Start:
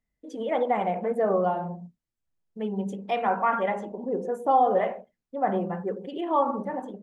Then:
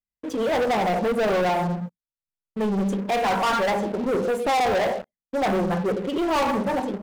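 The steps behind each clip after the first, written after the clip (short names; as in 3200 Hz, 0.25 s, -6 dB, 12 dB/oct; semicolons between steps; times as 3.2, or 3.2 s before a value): sample leveller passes 5; gain -7 dB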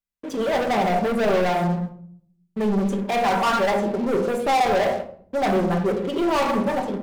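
shoebox room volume 970 m³, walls furnished, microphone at 1.2 m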